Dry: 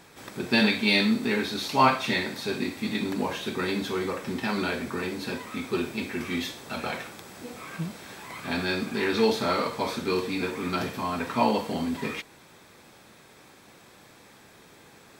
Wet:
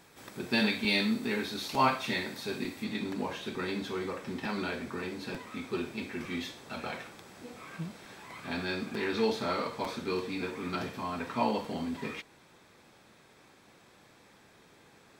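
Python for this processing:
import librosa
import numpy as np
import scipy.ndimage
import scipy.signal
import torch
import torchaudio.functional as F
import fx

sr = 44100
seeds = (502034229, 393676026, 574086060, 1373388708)

y = fx.high_shelf(x, sr, hz=10000.0, db=fx.steps((0.0, 3.0), (2.83, -8.5)))
y = fx.buffer_crackle(y, sr, first_s=0.84, period_s=0.9, block=256, kind='repeat')
y = F.gain(torch.from_numpy(y), -6.0).numpy()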